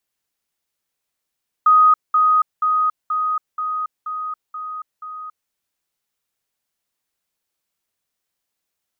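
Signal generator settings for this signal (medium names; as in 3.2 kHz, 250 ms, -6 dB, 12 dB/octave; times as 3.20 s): level ladder 1.25 kHz -8.5 dBFS, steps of -3 dB, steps 8, 0.28 s 0.20 s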